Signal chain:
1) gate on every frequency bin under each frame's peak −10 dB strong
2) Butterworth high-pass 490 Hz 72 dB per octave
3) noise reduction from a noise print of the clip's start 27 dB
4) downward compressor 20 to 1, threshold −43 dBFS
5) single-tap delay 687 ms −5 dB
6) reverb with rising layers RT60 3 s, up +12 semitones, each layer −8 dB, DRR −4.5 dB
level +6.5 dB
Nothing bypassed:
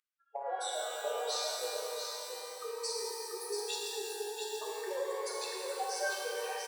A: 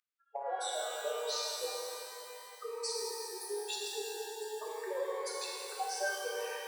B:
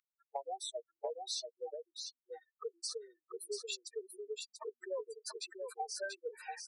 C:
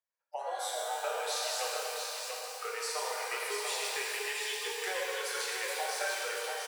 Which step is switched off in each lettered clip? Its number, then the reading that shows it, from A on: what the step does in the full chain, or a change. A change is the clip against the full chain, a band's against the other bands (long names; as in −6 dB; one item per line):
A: 5, change in momentary loudness spread +3 LU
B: 6, change in momentary loudness spread +1 LU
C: 1, 2 kHz band +4.5 dB